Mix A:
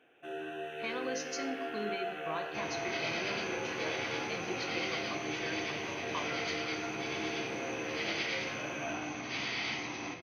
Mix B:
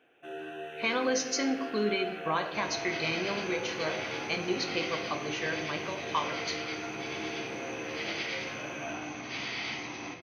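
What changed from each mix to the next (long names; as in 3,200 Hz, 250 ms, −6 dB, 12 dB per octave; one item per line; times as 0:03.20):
speech +9.5 dB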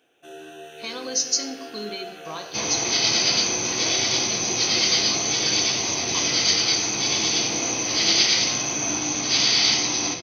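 speech −5.0 dB
second sound +11.0 dB
master: add high shelf with overshoot 3,400 Hz +13.5 dB, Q 1.5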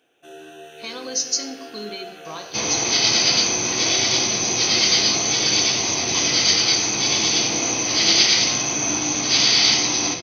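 second sound +3.0 dB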